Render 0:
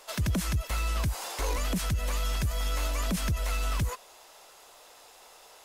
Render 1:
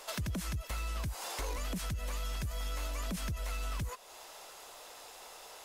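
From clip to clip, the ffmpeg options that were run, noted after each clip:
ffmpeg -i in.wav -af "acompressor=threshold=-42dB:ratio=2.5,volume=2.5dB" out.wav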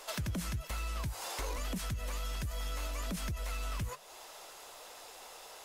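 ffmpeg -i in.wav -af "flanger=delay=2.2:depth=9.7:regen=82:speed=1.2:shape=triangular,volume=4.5dB" out.wav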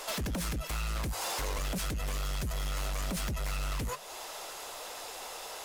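ffmpeg -i in.wav -af "aeval=exprs='0.0562*sin(PI/2*3.16*val(0)/0.0562)':channel_layout=same,volume=-5.5dB" out.wav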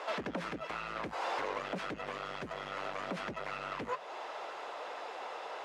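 ffmpeg -i in.wav -af "highpass=310,lowpass=2100,volume=3dB" out.wav

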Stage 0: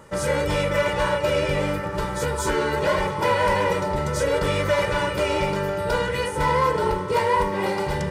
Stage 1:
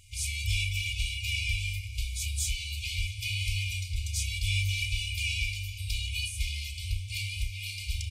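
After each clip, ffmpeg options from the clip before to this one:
ffmpeg -i in.wav -filter_complex "[0:a]afftfilt=real='re*(1-between(b*sr/4096,110,2100))':imag='im*(1-between(b*sr/4096,110,2100))':win_size=4096:overlap=0.75,asplit=2[link_01][link_02];[link_02]adelay=32,volume=-12.5dB[link_03];[link_01][link_03]amix=inputs=2:normalize=0" out.wav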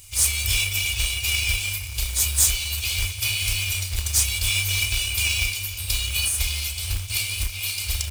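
ffmpeg -i in.wav -af "aemphasis=mode=production:type=50fm,bandreject=frequency=50:width_type=h:width=6,bandreject=frequency=100:width_type=h:width=6,acrusher=bits=2:mode=log:mix=0:aa=0.000001,volume=5.5dB" out.wav

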